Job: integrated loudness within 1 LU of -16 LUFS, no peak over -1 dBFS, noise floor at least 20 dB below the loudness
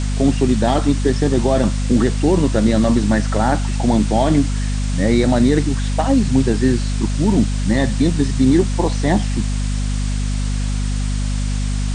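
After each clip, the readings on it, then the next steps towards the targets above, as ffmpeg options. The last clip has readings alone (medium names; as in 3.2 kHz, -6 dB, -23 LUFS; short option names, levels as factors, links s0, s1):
hum 50 Hz; highest harmonic 250 Hz; hum level -17 dBFS; noise floor -20 dBFS; noise floor target -38 dBFS; loudness -17.5 LUFS; peak level -3.0 dBFS; loudness target -16.0 LUFS
-> -af "bandreject=f=50:t=h:w=4,bandreject=f=100:t=h:w=4,bandreject=f=150:t=h:w=4,bandreject=f=200:t=h:w=4,bandreject=f=250:t=h:w=4"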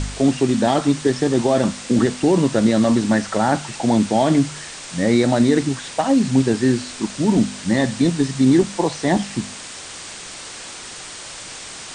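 hum not found; noise floor -35 dBFS; noise floor target -39 dBFS
-> -af "afftdn=nr=6:nf=-35"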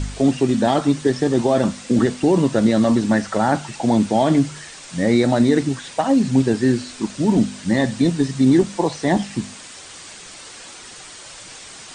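noise floor -39 dBFS; loudness -18.5 LUFS; peak level -5.0 dBFS; loudness target -16.0 LUFS
-> -af "volume=1.33"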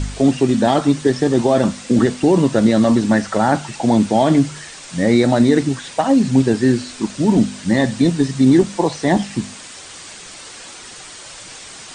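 loudness -16.0 LUFS; peak level -2.5 dBFS; noise floor -37 dBFS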